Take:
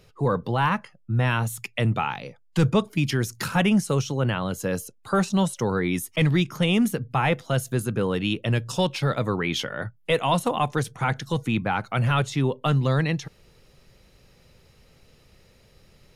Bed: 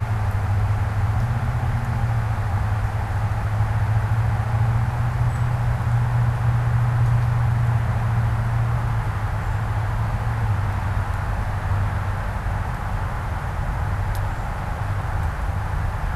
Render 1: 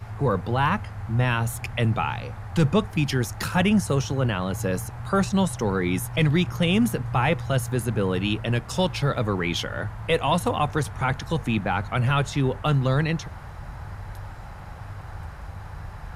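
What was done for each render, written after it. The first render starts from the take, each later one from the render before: add bed -13 dB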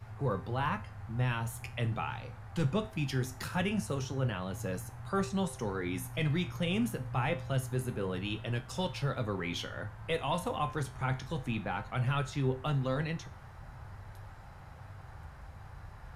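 flange 0.22 Hz, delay 8.8 ms, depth 8.4 ms, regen -68%; feedback comb 130 Hz, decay 0.38 s, harmonics all, mix 60%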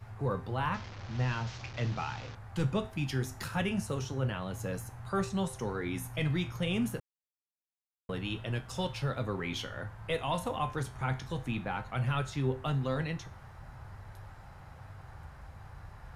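0.74–2.35 s: one-bit delta coder 32 kbps, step -40 dBFS; 7.00–8.09 s: mute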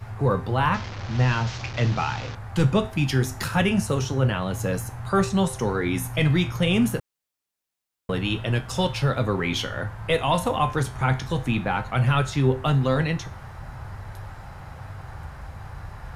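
trim +10.5 dB

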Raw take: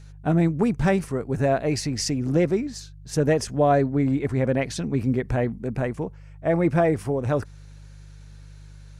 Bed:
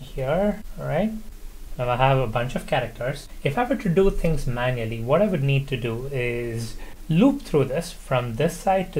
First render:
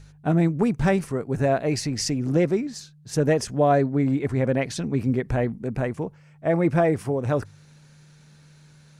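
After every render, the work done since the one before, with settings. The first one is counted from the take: de-hum 50 Hz, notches 2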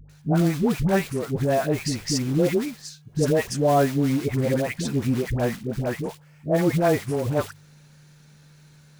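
short-mantissa float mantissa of 2-bit; phase dispersion highs, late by 96 ms, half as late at 710 Hz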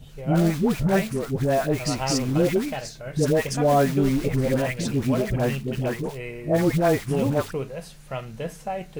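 add bed -9.5 dB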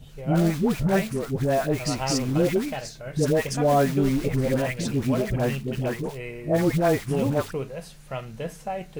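trim -1 dB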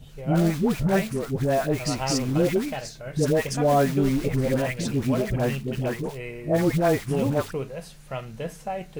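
no audible change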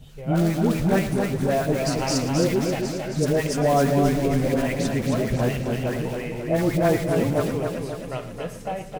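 delay 114 ms -14 dB; modulated delay 268 ms, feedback 54%, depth 57 cents, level -5 dB

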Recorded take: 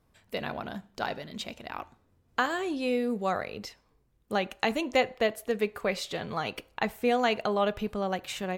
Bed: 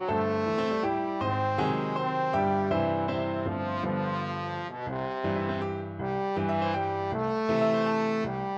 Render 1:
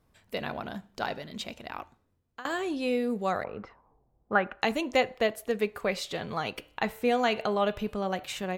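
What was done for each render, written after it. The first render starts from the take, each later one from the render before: 1.67–2.45 s: fade out, to -20.5 dB; 3.44–4.62 s: touch-sensitive low-pass 740–1500 Hz up, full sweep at -34.5 dBFS; 6.54–8.24 s: de-hum 148.2 Hz, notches 29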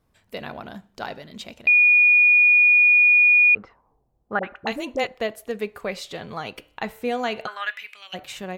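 1.67–3.55 s: bleep 2.45 kHz -11.5 dBFS; 4.39–5.07 s: phase dispersion highs, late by 43 ms, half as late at 670 Hz; 7.46–8.13 s: resonant high-pass 1.4 kHz -> 2.8 kHz, resonance Q 7.5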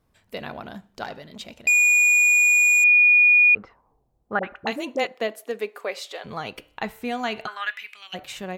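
1.04–2.84 s: transformer saturation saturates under 2.9 kHz; 4.70–6.24 s: high-pass 120 Hz -> 470 Hz 24 dB/octave; 6.86–8.15 s: peaking EQ 530 Hz -14.5 dB 0.25 oct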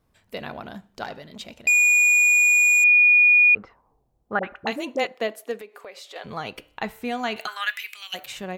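5.61–6.16 s: compression 3:1, threshold -40 dBFS; 7.36–8.26 s: RIAA curve recording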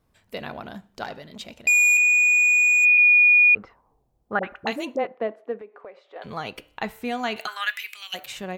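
1.97–2.98 s: robot voice 81.9 Hz; 4.96–6.22 s: low-pass 1.3 kHz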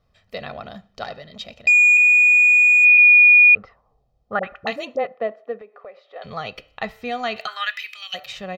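resonant high shelf 6.7 kHz -11 dB, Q 1.5; comb 1.6 ms, depth 57%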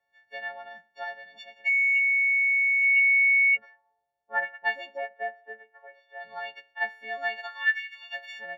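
partials quantised in pitch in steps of 4 st; two resonant band-passes 1.2 kHz, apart 1.1 oct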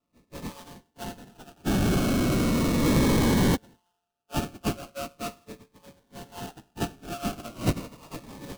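sample-rate reducer 2 kHz, jitter 20%; Shepard-style phaser falling 0.38 Hz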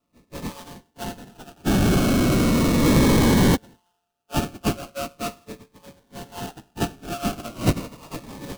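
trim +5 dB

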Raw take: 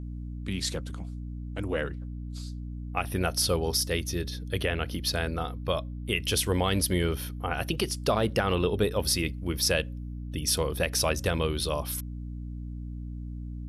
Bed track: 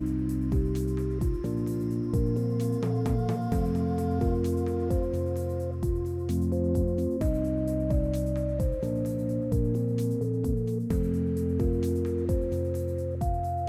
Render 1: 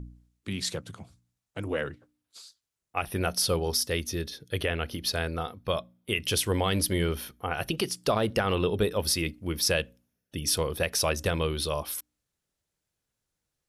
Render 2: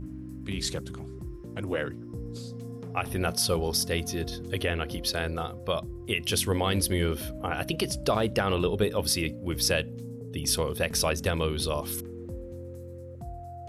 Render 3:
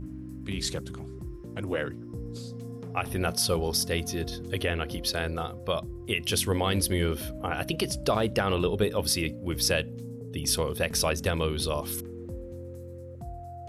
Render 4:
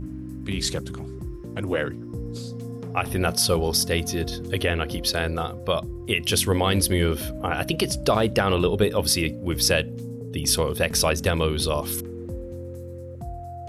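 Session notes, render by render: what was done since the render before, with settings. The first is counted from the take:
de-hum 60 Hz, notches 5
add bed track -11.5 dB
no audible change
trim +5 dB

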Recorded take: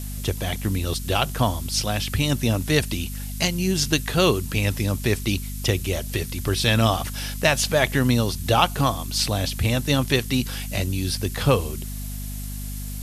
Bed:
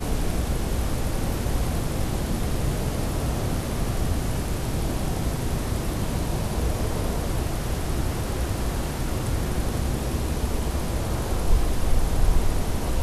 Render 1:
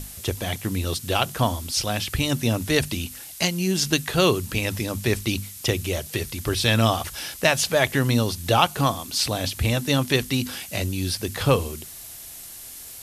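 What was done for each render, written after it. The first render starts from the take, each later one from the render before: hum notches 50/100/150/200/250 Hz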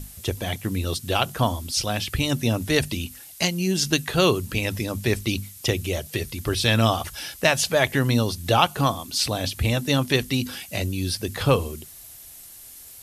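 noise reduction 6 dB, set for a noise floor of -40 dBFS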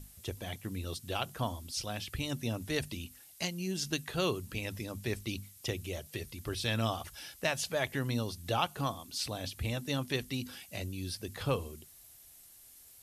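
trim -12.5 dB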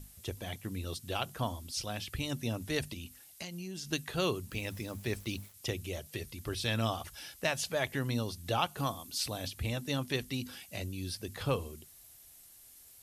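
2.93–3.91 s: compression, threshold -38 dBFS; 4.50–5.54 s: small samples zeroed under -51 dBFS; 8.77–9.48 s: treble shelf 9.5 kHz +7 dB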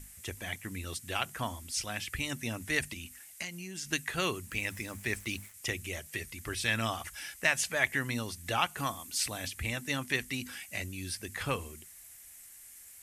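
graphic EQ 125/500/2000/4000/8000 Hz -4/-4/+11/-5/+8 dB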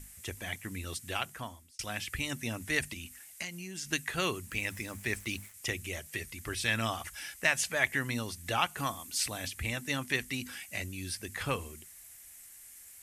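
1.09–1.79 s: fade out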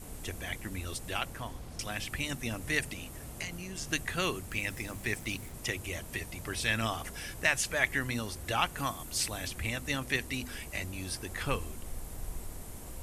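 add bed -20 dB

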